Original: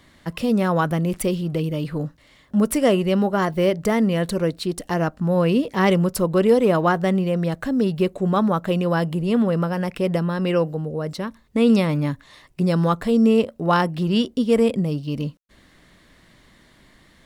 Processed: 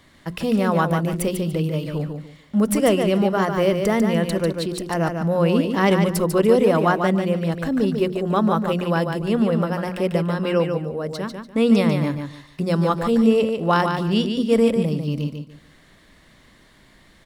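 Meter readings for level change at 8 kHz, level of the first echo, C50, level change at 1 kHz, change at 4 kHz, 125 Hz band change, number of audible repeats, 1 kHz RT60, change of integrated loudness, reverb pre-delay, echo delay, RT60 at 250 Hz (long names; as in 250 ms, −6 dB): +1.0 dB, −6.0 dB, no reverb audible, +1.0 dB, +1.0 dB, 0.0 dB, 3, no reverb audible, +0.5 dB, no reverb audible, 146 ms, no reverb audible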